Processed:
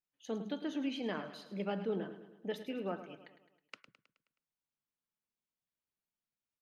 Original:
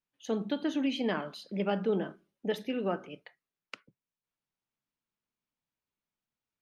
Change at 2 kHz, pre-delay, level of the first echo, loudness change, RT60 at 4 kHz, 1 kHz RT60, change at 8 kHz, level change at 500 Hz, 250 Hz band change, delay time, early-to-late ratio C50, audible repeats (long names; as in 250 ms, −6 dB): −6.5 dB, no reverb audible, −12.0 dB, −6.5 dB, no reverb audible, no reverb audible, can't be measured, −6.5 dB, −6.5 dB, 106 ms, no reverb audible, 5